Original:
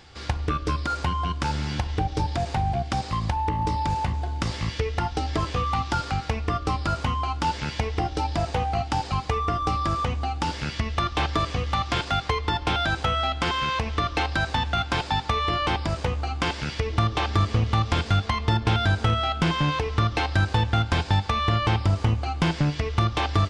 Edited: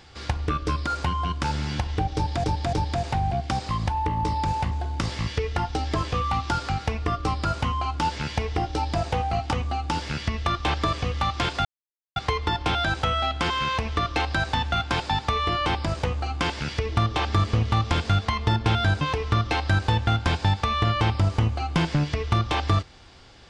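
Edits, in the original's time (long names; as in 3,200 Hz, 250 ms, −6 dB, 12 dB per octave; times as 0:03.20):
0:02.15–0:02.44: repeat, 3 plays
0:08.94–0:10.04: remove
0:12.17: splice in silence 0.51 s
0:19.02–0:19.67: remove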